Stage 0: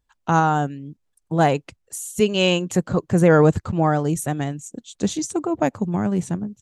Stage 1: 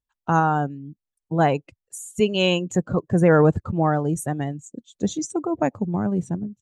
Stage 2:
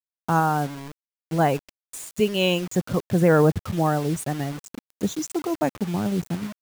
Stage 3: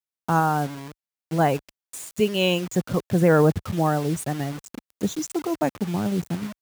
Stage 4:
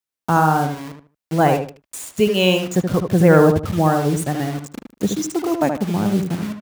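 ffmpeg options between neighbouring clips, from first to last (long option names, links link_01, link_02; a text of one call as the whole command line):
ffmpeg -i in.wav -af "afftdn=noise_reduction=14:noise_floor=-33,volume=-1.5dB" out.wav
ffmpeg -i in.wav -af "acrusher=bits=5:mix=0:aa=0.000001,volume=-1.5dB" out.wav
ffmpeg -i in.wav -af "highpass=42" out.wav
ffmpeg -i in.wav -filter_complex "[0:a]asplit=2[link_01][link_02];[link_02]adelay=76,lowpass=frequency=2200:poles=1,volume=-5.5dB,asplit=2[link_03][link_04];[link_04]adelay=76,lowpass=frequency=2200:poles=1,volume=0.25,asplit=2[link_05][link_06];[link_06]adelay=76,lowpass=frequency=2200:poles=1,volume=0.25[link_07];[link_01][link_03][link_05][link_07]amix=inputs=4:normalize=0,volume=4.5dB" out.wav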